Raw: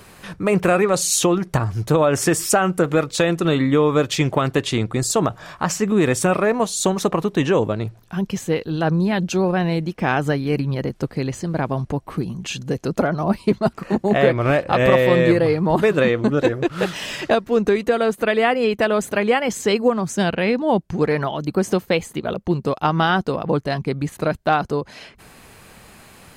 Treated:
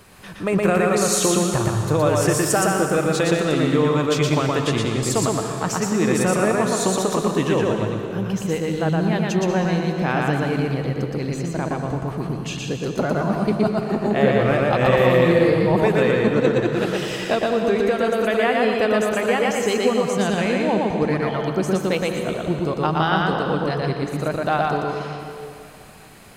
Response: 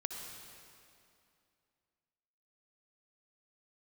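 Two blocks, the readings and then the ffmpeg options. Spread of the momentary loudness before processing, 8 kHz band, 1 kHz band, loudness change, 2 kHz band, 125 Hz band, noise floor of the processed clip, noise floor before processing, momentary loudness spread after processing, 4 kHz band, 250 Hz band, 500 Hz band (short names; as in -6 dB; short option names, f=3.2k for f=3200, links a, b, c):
8 LU, -0.5 dB, -0.5 dB, -0.5 dB, -0.5 dB, 0.0 dB, -35 dBFS, -47 dBFS, 8 LU, -0.5 dB, -0.5 dB, -0.5 dB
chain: -filter_complex "[0:a]asplit=2[a][b];[1:a]atrim=start_sample=2205,adelay=118[c];[b][c]afir=irnorm=-1:irlink=0,volume=0.5dB[d];[a][d]amix=inputs=2:normalize=0,volume=-4dB"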